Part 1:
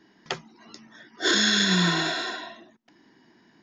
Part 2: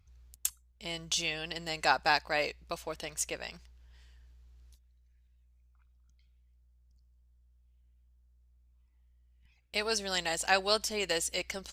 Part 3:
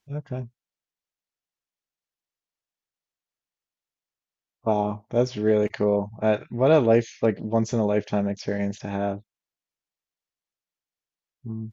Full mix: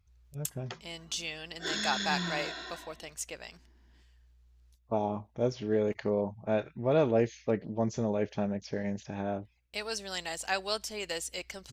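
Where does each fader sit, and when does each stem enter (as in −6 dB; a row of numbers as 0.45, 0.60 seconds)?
−12.5, −4.5, −7.5 decibels; 0.40, 0.00, 0.25 seconds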